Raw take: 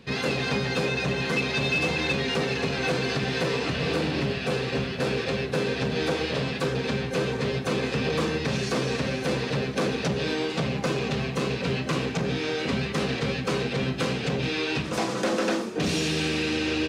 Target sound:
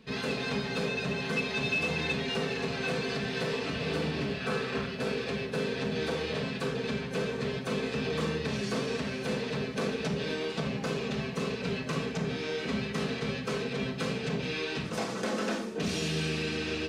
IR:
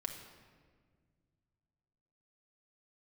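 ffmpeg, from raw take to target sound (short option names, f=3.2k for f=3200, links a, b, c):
-filter_complex "[0:a]asettb=1/sr,asplit=3[a][b][c];[a]atrim=end=4.404[d];[b]atrim=start=4.4:end=4.86,asetpts=PTS-STARTPTS,afade=t=in:d=0.004:c=qsin,afade=t=out:st=0.456:d=0.004:c=qsin,equalizer=f=1.3k:t=o:w=0.73:g=8[e];[c]atrim=start=4.856[f];[d][e]acrossfade=d=0.004:c1=hsin:c2=qsin[g];[g][f]acrossfade=d=0.004:c1=qsin:c2=hsin[h];[1:a]atrim=start_sample=2205,atrim=end_sample=3969[i];[h][i]afir=irnorm=-1:irlink=0,volume=-4.5dB"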